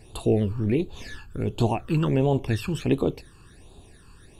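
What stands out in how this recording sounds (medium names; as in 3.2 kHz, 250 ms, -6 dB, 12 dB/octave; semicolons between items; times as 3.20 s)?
phasing stages 12, 1.4 Hz, lowest notch 630–1900 Hz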